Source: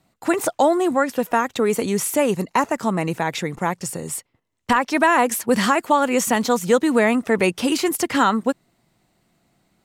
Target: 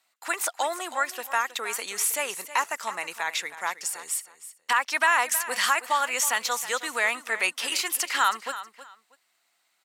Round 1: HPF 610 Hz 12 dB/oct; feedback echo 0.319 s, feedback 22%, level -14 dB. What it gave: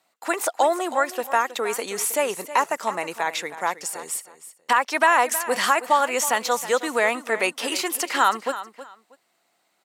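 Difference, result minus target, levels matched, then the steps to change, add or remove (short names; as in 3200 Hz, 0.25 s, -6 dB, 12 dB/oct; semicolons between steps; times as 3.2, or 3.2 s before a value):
500 Hz band +8.0 dB
change: HPF 1300 Hz 12 dB/oct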